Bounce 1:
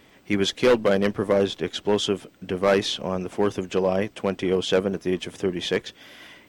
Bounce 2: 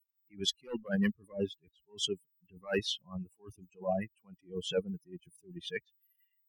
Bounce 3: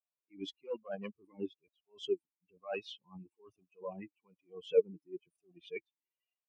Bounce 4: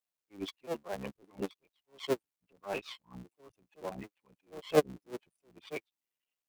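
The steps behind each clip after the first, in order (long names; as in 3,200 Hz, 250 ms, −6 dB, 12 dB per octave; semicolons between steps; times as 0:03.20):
spectral dynamics exaggerated over time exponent 3; level that may rise only so fast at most 230 dB per second
formant filter swept between two vowels a-u 1.1 Hz; level +7.5 dB
sub-harmonics by changed cycles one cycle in 3, muted; level +3.5 dB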